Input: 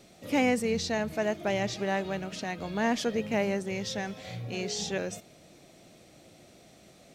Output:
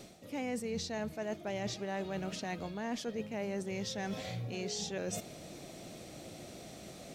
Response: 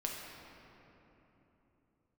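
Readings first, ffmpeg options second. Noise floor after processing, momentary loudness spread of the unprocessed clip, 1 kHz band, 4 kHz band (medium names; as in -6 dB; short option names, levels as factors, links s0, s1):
-51 dBFS, 9 LU, -9.0 dB, -6.0 dB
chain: -af "equalizer=f=2000:t=o:w=1.8:g=-2.5,areverse,acompressor=threshold=0.00708:ratio=6,areverse,volume=2.24"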